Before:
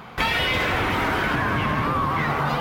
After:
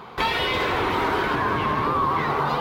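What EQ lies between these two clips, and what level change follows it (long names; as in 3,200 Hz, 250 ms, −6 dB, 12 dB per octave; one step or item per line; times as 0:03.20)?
graphic EQ with 15 bands 400 Hz +10 dB, 1,000 Hz +8 dB, 4,000 Hz +6 dB
−5.0 dB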